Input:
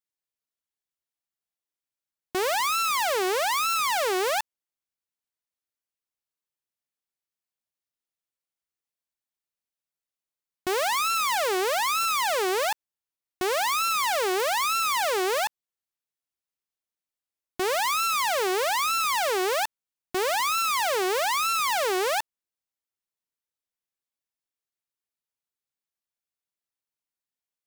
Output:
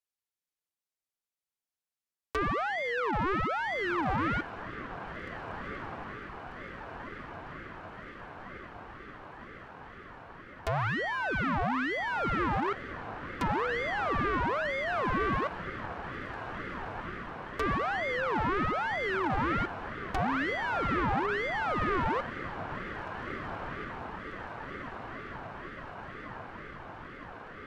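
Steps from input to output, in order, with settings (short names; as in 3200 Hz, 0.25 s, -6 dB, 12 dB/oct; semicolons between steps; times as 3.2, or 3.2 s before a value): treble ducked by the level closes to 1400 Hz, closed at -25.5 dBFS; diffused feedback echo 1.683 s, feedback 73%, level -10.5 dB; ring modulator with a swept carrier 540 Hz, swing 50%, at 2.1 Hz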